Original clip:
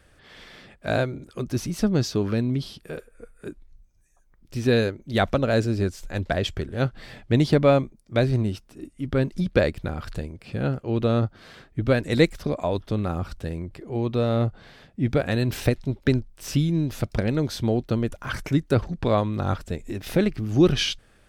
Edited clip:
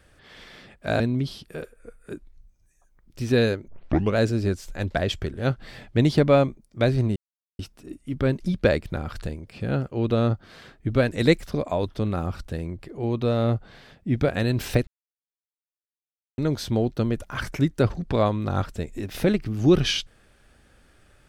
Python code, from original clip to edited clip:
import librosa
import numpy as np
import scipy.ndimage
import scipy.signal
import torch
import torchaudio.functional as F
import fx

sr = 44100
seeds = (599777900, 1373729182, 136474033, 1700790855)

y = fx.edit(x, sr, fx.cut(start_s=1.0, length_s=1.35),
    fx.tape_start(start_s=5.03, length_s=0.49),
    fx.insert_silence(at_s=8.51, length_s=0.43),
    fx.silence(start_s=15.79, length_s=1.51), tone=tone)